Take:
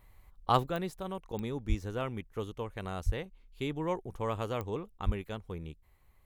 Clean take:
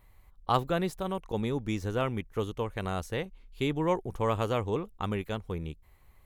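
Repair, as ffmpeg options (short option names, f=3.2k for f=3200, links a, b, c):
-filter_complex "[0:a]adeclick=t=4,asplit=3[a][b][c];[a]afade=t=out:st=1.68:d=0.02[d];[b]highpass=f=140:w=0.5412,highpass=f=140:w=1.3066,afade=t=in:st=1.68:d=0.02,afade=t=out:st=1.8:d=0.02[e];[c]afade=t=in:st=1.8:d=0.02[f];[d][e][f]amix=inputs=3:normalize=0,asplit=3[g][h][i];[g]afade=t=out:st=3.05:d=0.02[j];[h]highpass=f=140:w=0.5412,highpass=f=140:w=1.3066,afade=t=in:st=3.05:d=0.02,afade=t=out:st=3.17:d=0.02[k];[i]afade=t=in:st=3.17:d=0.02[l];[j][k][l]amix=inputs=3:normalize=0,asplit=3[m][n][o];[m]afade=t=out:st=5.05:d=0.02[p];[n]highpass=f=140:w=0.5412,highpass=f=140:w=1.3066,afade=t=in:st=5.05:d=0.02,afade=t=out:st=5.17:d=0.02[q];[o]afade=t=in:st=5.17:d=0.02[r];[p][q][r]amix=inputs=3:normalize=0,asetnsamples=n=441:p=0,asendcmd='0.66 volume volume 5.5dB',volume=0dB"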